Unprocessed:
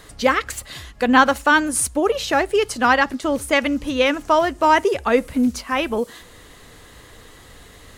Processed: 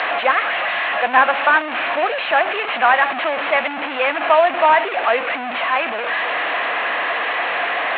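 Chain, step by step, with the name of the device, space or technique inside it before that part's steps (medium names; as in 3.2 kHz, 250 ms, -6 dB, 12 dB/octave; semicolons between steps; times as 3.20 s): digital answering machine (band-pass 380–3100 Hz; one-bit delta coder 16 kbps, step -17 dBFS; cabinet simulation 400–4500 Hz, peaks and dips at 420 Hz -7 dB, 700 Hz +10 dB, 1.1 kHz +4 dB, 1.7 kHz +5 dB, 2.5 kHz +5 dB, 4.2 kHz +10 dB); trim -1 dB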